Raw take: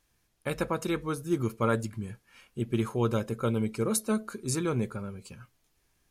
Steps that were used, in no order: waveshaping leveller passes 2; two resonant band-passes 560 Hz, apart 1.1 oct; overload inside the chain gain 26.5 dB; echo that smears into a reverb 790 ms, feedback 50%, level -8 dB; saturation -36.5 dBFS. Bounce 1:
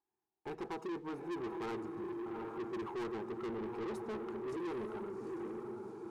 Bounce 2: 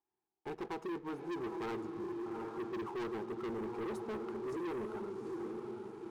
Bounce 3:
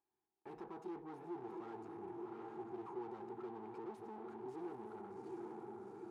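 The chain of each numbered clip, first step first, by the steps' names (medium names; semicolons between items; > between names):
two resonant band-passes > overload inside the chain > echo that smears into a reverb > saturation > waveshaping leveller; two resonant band-passes > overload inside the chain > echo that smears into a reverb > waveshaping leveller > saturation; overload inside the chain > echo that smears into a reverb > waveshaping leveller > saturation > two resonant band-passes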